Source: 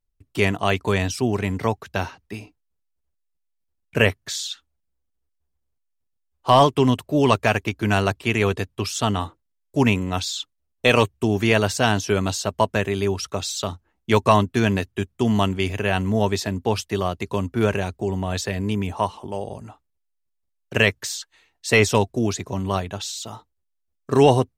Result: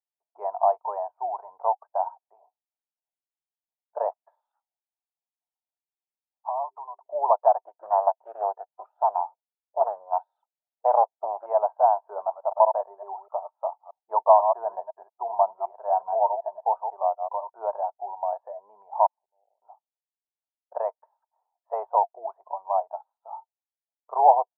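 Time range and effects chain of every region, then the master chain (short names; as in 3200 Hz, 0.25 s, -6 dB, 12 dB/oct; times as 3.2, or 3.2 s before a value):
4.51–7.06 tilt +3.5 dB/oct + notches 50/100/150/200/250/300/350/400 Hz + compressor 16:1, threshold -25 dBFS
7.63–11.46 high shelf 2300 Hz +8 dB + notch comb 1100 Hz + Doppler distortion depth 0.51 ms
12.03–17.49 reverse delay 0.125 s, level -7 dB + LPF 2400 Hz 6 dB/oct
19.06–19.62 passive tone stack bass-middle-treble 10-0-1 + auto swell 0.19 s + mismatched tape noise reduction decoder only
whole clip: Chebyshev low-pass 930 Hz, order 5; spectral noise reduction 8 dB; elliptic high-pass 680 Hz, stop band 60 dB; gain +7 dB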